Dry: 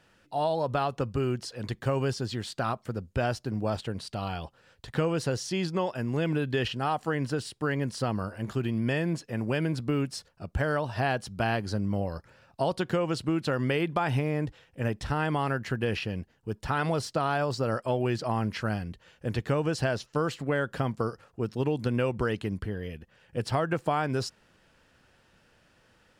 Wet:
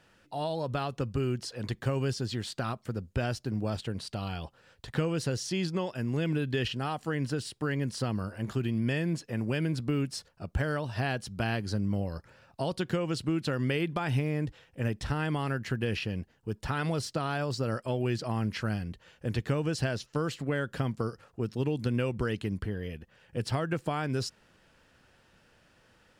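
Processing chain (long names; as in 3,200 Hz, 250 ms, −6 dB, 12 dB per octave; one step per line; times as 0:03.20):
dynamic equaliser 830 Hz, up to −7 dB, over −40 dBFS, Q 0.73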